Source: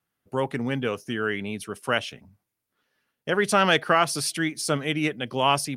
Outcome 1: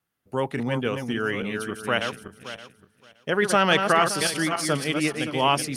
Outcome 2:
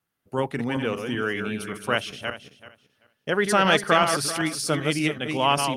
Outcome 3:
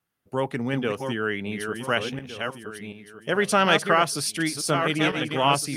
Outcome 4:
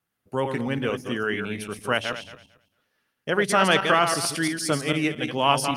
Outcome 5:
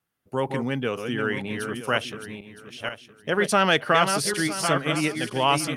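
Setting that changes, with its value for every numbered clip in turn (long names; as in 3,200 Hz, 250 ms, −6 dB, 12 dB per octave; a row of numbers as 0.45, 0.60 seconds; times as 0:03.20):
feedback delay that plays each chunk backwards, delay time: 285, 192, 731, 112, 482 milliseconds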